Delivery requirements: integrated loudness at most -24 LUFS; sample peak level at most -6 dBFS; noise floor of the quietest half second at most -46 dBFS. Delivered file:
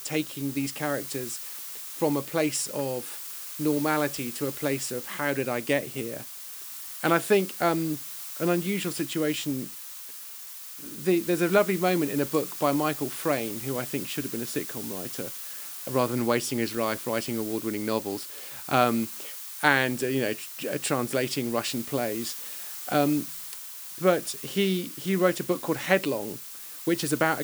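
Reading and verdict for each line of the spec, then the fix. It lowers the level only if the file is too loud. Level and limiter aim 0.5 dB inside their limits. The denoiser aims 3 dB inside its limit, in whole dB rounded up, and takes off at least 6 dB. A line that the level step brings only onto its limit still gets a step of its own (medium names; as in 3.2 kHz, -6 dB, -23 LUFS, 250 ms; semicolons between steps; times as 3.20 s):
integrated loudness -28.0 LUFS: pass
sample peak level -3.5 dBFS: fail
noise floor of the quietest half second -41 dBFS: fail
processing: noise reduction 8 dB, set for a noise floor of -41 dBFS; peak limiter -6.5 dBFS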